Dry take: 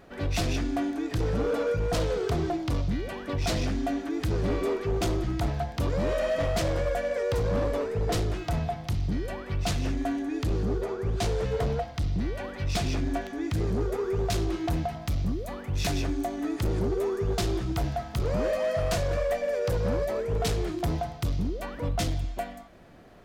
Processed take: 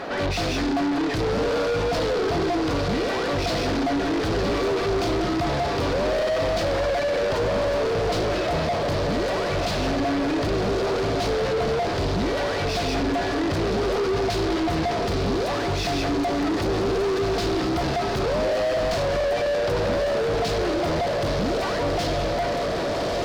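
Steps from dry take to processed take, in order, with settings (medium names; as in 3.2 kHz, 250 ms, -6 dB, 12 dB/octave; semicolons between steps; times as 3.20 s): hum notches 60/120/180/240/300/360/420/480 Hz; echo that smears into a reverb 1242 ms, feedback 71%, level -10.5 dB; overdrive pedal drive 35 dB, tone 1 kHz, clips at -16 dBFS; peaking EQ 4.6 kHz +8.5 dB 0.95 oct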